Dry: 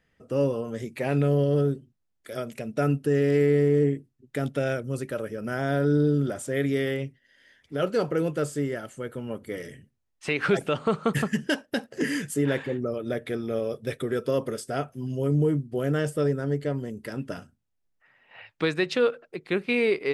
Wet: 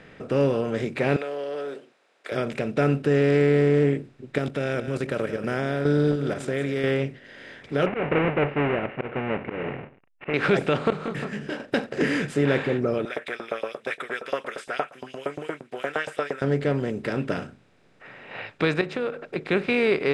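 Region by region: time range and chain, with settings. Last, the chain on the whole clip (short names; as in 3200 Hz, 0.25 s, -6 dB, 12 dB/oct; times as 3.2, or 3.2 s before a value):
1.16–2.32 HPF 510 Hz 24 dB/oct + compressor 2.5:1, threshold -42 dBFS
4.38–6.84 high shelf 6300 Hz +9 dB + level quantiser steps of 11 dB + echo 0.179 s -17.5 dB
7.86–10.34 half-waves squared off + rippled Chebyshev low-pass 2900 Hz, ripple 6 dB + auto swell 0.18 s
10.9–11.6 compressor, threshold -32 dBFS + detuned doubles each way 18 cents
13.05–16.42 bell 4500 Hz -12 dB 0.89 oct + LFO high-pass saw up 8.6 Hz 670–4800 Hz
18.81–19.36 compressor 1.5:1, threshold -46 dBFS + dynamic EQ 3600 Hz, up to -8 dB, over -54 dBFS, Q 0.7
whole clip: per-bin compression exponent 0.6; LPF 4800 Hz 12 dB/oct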